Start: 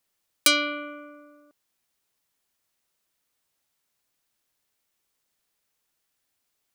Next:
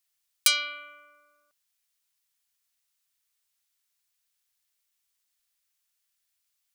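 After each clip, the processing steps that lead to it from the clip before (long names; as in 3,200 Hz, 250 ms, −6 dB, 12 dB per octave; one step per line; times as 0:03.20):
guitar amp tone stack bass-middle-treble 10-0-10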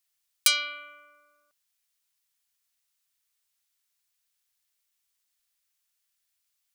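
no processing that can be heard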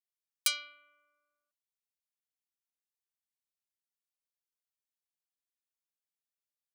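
expander for the loud parts 1.5 to 1, over −42 dBFS
level −7 dB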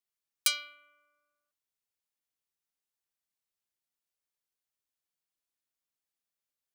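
noise that follows the level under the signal 31 dB
level +2 dB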